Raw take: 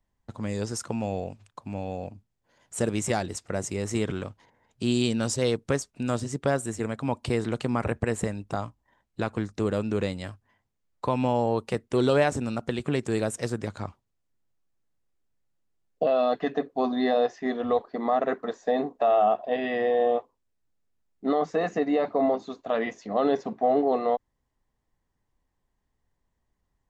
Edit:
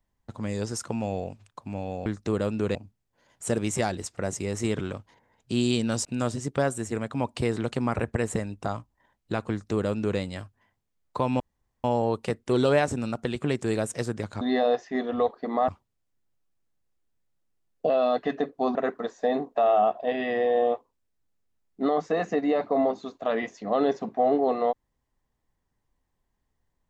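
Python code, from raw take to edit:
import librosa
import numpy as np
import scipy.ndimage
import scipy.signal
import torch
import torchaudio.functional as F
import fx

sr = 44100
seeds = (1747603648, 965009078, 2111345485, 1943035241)

y = fx.edit(x, sr, fx.cut(start_s=5.36, length_s=0.57),
    fx.duplicate(start_s=9.38, length_s=0.69, to_s=2.06),
    fx.insert_room_tone(at_s=11.28, length_s=0.44),
    fx.move(start_s=16.92, length_s=1.27, to_s=13.85), tone=tone)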